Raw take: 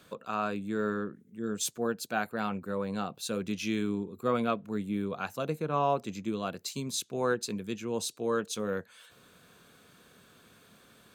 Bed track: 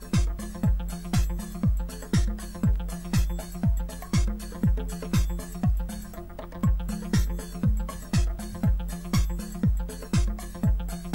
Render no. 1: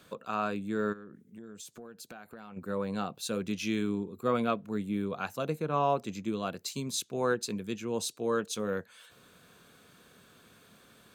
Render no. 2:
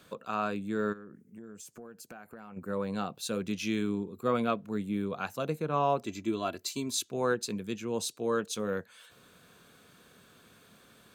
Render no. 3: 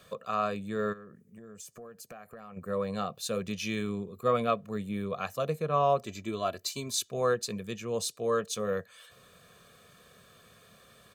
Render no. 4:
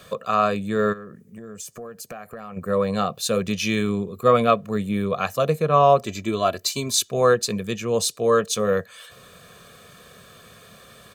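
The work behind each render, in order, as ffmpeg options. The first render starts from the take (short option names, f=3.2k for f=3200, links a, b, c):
-filter_complex "[0:a]asplit=3[a][b][c];[a]afade=t=out:st=0.92:d=0.02[d];[b]acompressor=threshold=-42dB:ratio=16:attack=3.2:release=140:knee=1:detection=peak,afade=t=in:st=0.92:d=0.02,afade=t=out:st=2.56:d=0.02[e];[c]afade=t=in:st=2.56:d=0.02[f];[d][e][f]amix=inputs=3:normalize=0"
-filter_complex "[0:a]asettb=1/sr,asplit=3[a][b][c];[a]atrim=end=0.984[d];[b]atrim=start=0.98:end=2.73,asetpts=PTS-STARTPTS,afade=t=in:d=0.004:c=qsin,afade=t=out:st=1.746:d=0.004:c=qsin,equalizer=f=3.7k:w=2.8:g=-12[e];[c]atrim=start=2.726[f];[d][e]acrossfade=d=0.004:c1=hsin:c2=qsin[g];[g][f]acrossfade=d=0.004:c1=qsin:c2=hsin,asettb=1/sr,asplit=3[h][i][j];[h]atrim=end=6.064[k];[i]atrim=start=6.06:end=7.1,asetpts=PTS-STARTPTS,afade=t=in:d=0.004:c=qsin,afade=t=out:st=1.036:d=0.004:c=qsin,aecho=1:1:3:0.65,atrim=end_sample=45864[l];[j]atrim=start=7.096[m];[k][l]acrossfade=d=0.004:c1=hsin:c2=qsin[n];[n][m]acrossfade=d=0.004:c1=qsin:c2=hsin"
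-af "aecho=1:1:1.7:0.61"
-af "volume=10dB"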